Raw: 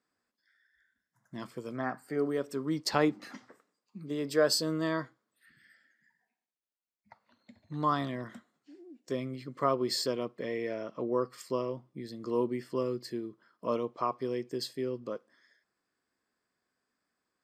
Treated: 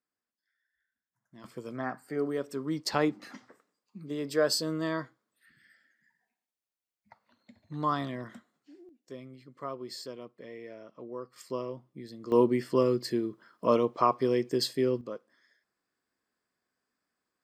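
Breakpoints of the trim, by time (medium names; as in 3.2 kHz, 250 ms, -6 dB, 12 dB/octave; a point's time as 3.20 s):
-11 dB
from 1.44 s -0.5 dB
from 8.89 s -10 dB
from 11.36 s -2.5 dB
from 12.32 s +7 dB
from 15.01 s -1.5 dB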